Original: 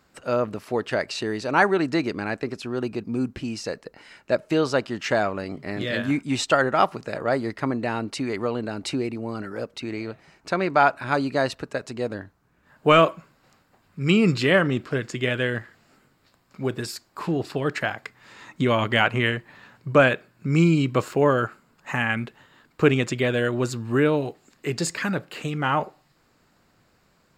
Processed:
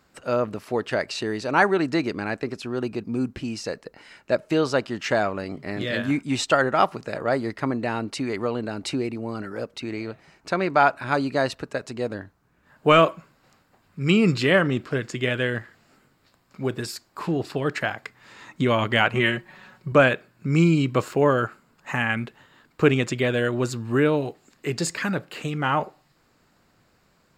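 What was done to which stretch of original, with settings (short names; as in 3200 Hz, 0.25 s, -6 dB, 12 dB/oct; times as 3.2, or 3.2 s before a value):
19.14–19.92 comb 5.4 ms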